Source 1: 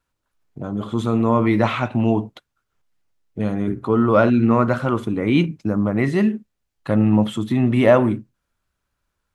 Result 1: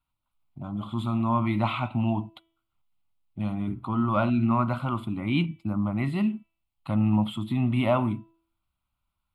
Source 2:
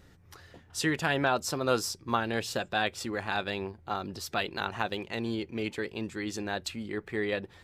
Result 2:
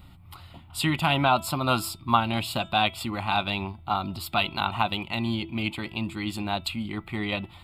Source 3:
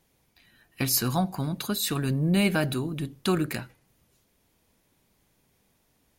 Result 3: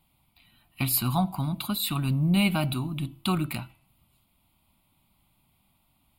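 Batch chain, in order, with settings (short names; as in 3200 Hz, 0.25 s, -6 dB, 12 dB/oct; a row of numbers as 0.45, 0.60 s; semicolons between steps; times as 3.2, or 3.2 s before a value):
fixed phaser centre 1700 Hz, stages 6; de-hum 330.2 Hz, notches 11; match loudness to -27 LUFS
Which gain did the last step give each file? -4.0, +9.5, +3.0 dB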